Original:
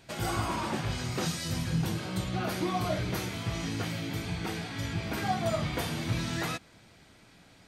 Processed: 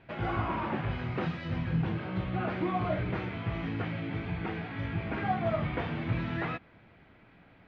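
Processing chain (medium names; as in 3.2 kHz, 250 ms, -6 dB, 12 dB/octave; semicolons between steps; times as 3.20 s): low-pass 2.6 kHz 24 dB/octave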